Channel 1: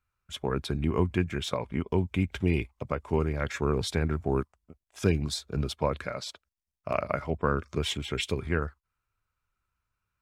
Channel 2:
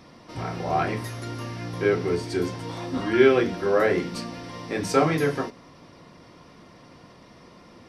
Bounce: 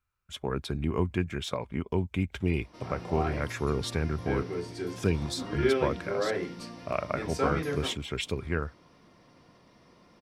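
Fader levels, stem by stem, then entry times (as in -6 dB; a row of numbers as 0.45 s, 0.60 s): -2.0 dB, -9.0 dB; 0.00 s, 2.45 s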